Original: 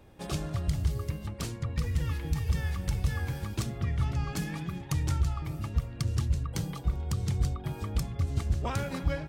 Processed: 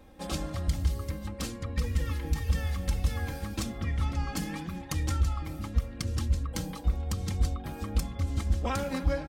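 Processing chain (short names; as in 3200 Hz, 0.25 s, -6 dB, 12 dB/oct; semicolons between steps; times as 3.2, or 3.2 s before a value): comb 3.8 ms, depth 74%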